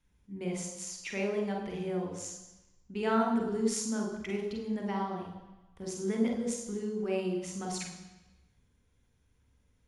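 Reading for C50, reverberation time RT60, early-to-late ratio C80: 4.5 dB, 1.0 s, 7.5 dB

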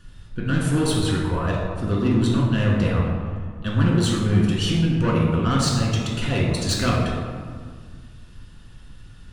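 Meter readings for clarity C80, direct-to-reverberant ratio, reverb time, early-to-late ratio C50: 2.5 dB, -4.5 dB, 1.8 s, 0.5 dB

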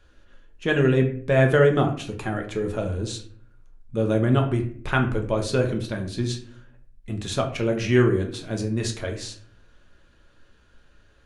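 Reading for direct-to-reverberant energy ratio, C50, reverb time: 2.5 dB, 9.5 dB, 0.50 s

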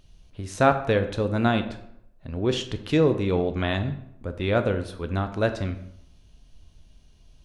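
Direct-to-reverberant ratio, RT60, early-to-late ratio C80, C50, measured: 8.0 dB, 0.75 s, 14.0 dB, 11.0 dB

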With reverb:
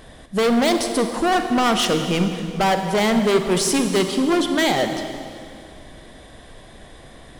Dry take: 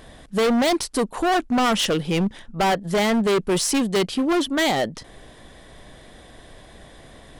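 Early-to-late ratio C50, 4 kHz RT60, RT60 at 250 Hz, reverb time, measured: 6.5 dB, 2.2 s, 2.7 s, 2.3 s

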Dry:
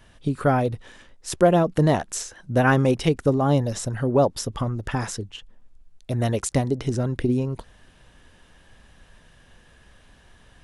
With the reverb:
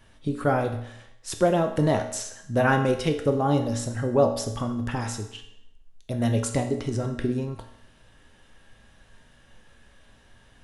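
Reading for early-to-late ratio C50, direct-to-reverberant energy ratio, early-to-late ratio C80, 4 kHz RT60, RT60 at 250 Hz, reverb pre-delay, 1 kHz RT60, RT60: 8.5 dB, 4.0 dB, 11.5 dB, 0.70 s, 0.75 s, 4 ms, 0.75 s, 0.75 s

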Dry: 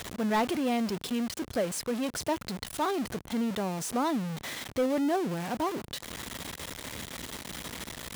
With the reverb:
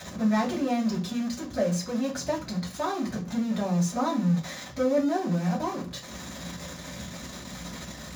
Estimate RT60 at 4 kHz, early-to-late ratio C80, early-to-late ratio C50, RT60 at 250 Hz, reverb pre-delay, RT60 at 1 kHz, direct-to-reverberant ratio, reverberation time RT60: 0.40 s, 17.0 dB, 11.5 dB, 0.45 s, 3 ms, 0.40 s, -6.0 dB, 0.40 s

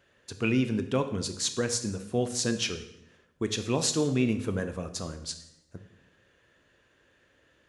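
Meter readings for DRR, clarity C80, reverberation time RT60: 8.0 dB, 13.5 dB, 0.85 s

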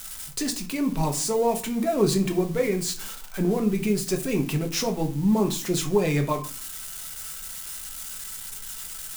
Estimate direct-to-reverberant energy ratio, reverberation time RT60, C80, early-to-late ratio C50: 3.5 dB, 0.40 s, 17.5 dB, 12.5 dB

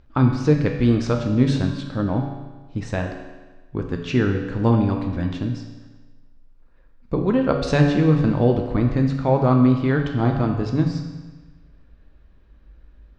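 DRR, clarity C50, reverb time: 2.5 dB, 5.5 dB, 1.3 s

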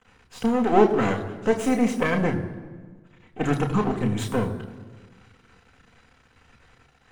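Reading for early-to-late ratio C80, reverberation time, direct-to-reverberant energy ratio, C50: 12.5 dB, 1.5 s, 2.5 dB, 11.5 dB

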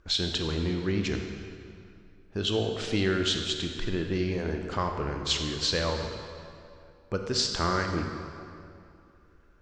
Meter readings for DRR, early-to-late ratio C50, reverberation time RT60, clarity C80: 3.5 dB, 4.5 dB, 2.5 s, 5.5 dB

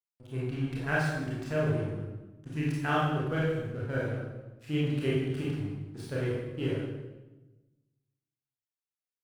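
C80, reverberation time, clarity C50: 3.0 dB, 1.1 s, -1.0 dB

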